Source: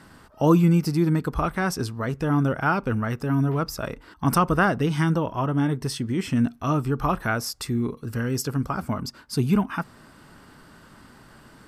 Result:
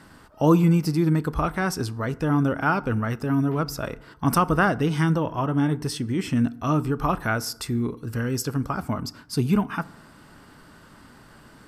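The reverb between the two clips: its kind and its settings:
feedback delay network reverb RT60 0.83 s, low-frequency decay 1.2×, high-frequency decay 0.5×, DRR 17 dB

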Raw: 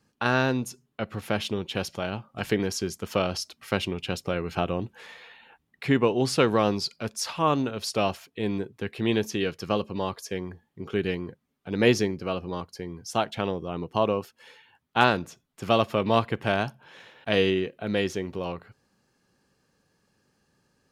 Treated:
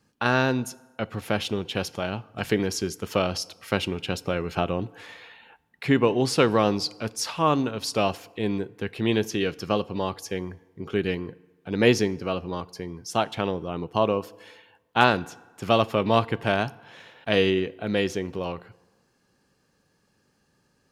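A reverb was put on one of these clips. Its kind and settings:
feedback delay network reverb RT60 1.3 s, low-frequency decay 0.85×, high-frequency decay 0.65×, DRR 20 dB
level +1.5 dB

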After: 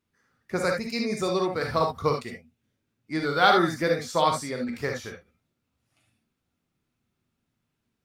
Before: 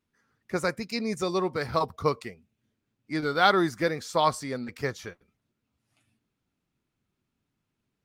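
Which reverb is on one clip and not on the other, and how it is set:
reverb whose tail is shaped and stops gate 90 ms rising, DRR 2 dB

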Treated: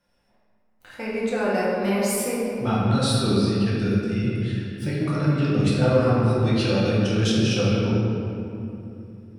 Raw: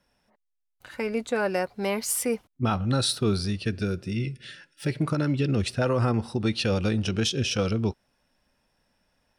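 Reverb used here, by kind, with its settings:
rectangular room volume 120 cubic metres, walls hard, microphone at 0.85 metres
level −4.5 dB

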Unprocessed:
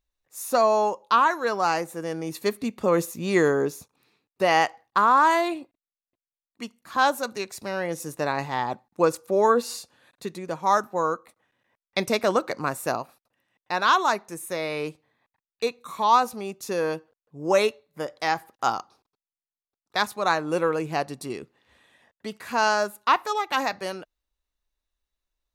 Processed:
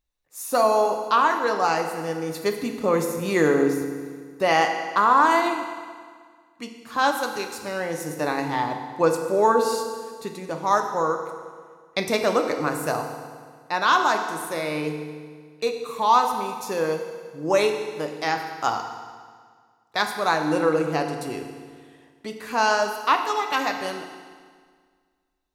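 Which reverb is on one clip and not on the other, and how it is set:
feedback delay network reverb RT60 1.8 s, low-frequency decay 1.1×, high-frequency decay 0.9×, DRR 4 dB

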